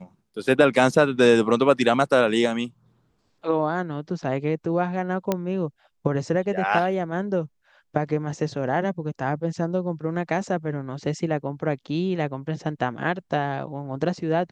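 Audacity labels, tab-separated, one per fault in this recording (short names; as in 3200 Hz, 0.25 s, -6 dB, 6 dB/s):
5.320000	5.320000	pop -9 dBFS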